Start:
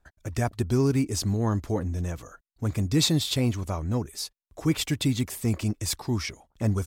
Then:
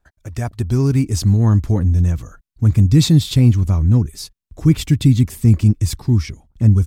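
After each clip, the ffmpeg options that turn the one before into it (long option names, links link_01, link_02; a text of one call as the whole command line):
ffmpeg -i in.wav -af "asubboost=boost=7:cutoff=230,dynaudnorm=framelen=110:gausssize=13:maxgain=5dB" out.wav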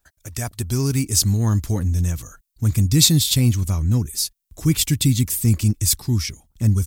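ffmpeg -i in.wav -af "crystalizer=i=5.5:c=0,volume=-5.5dB" out.wav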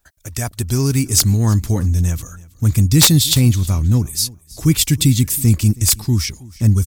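ffmpeg -i in.wav -af "aeval=exprs='(mod(1.88*val(0)+1,2)-1)/1.88':channel_layout=same,aecho=1:1:322|644:0.0841|0.0151,volume=4dB" out.wav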